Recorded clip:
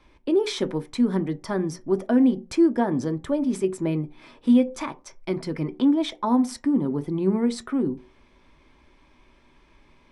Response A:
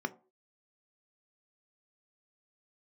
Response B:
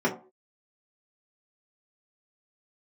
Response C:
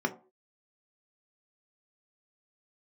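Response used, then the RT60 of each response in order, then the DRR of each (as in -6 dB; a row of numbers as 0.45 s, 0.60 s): A; no single decay rate, no single decay rate, no single decay rate; 8.0 dB, -6.0 dB, 3.0 dB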